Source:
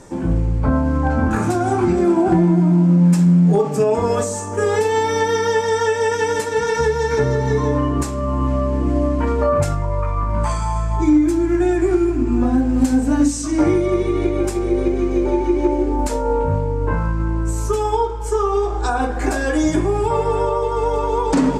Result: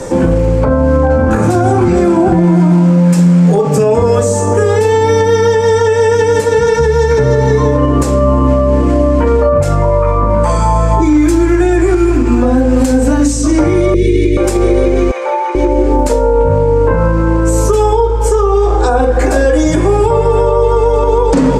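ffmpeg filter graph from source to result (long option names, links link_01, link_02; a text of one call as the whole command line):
ffmpeg -i in.wav -filter_complex "[0:a]asettb=1/sr,asplit=3[link_01][link_02][link_03];[link_01]atrim=end=13.944[link_04];[link_02]atrim=start=13.94:end=14.37,asetpts=PTS-STARTPTS,afade=type=in:duration=0.004:curve=qsin,afade=type=out:start_time=0.426:duration=0.004:curve=qsin,asuperstop=centerf=970:order=8:qfactor=0.64,lowshelf=frequency=490:gain=11[link_05];[link_03]atrim=start=14.366[link_06];[link_04][link_05]acrossfade=duration=0.004:curve1=hsin:curve2=qsin[link_07];[link_07][link_06]acrossfade=duration=0.004:curve1=qsin:curve2=hsin,asettb=1/sr,asplit=3[link_08][link_09][link_10];[link_08]atrim=end=15.114[link_11];[link_09]atrim=start=15.11:end=15.55,asetpts=PTS-STARTPTS,afade=type=in:duration=0.004:curve=qsin,afade=type=out:start_time=0.436:duration=0.004:curve=qsin,highpass=frequency=780:width=0.5412,highpass=frequency=780:width=1.3066,acrossover=split=2600[link_12][link_13];[link_13]acompressor=threshold=-56dB:ratio=4:attack=1:release=60[link_14];[link_12][link_14]amix=inputs=2:normalize=0[link_15];[link_10]atrim=start=15.546[link_16];[link_11][link_15]acrossfade=duration=0.004:curve1=hsin:curve2=qsin[link_17];[link_17][link_16]acrossfade=duration=0.004:curve1=qsin:curve2=hsin,equalizer=frequency=510:width=6:gain=12.5,acrossover=split=170|830[link_18][link_19][link_20];[link_18]acompressor=threshold=-28dB:ratio=4[link_21];[link_19]acompressor=threshold=-27dB:ratio=4[link_22];[link_20]acompressor=threshold=-37dB:ratio=4[link_23];[link_21][link_22][link_23]amix=inputs=3:normalize=0,alimiter=level_in=17.5dB:limit=-1dB:release=50:level=0:latency=1,volume=-1dB" out.wav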